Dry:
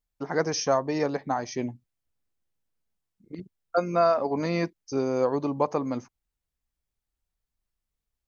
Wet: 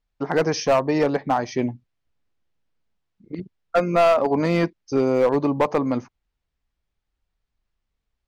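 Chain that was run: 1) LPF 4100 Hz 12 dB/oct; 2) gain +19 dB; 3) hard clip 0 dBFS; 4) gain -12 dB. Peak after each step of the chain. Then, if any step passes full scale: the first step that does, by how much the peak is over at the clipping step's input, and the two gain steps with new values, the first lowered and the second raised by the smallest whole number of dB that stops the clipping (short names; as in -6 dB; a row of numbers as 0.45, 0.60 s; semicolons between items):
-10.0, +9.0, 0.0, -12.0 dBFS; step 2, 9.0 dB; step 2 +10 dB, step 4 -3 dB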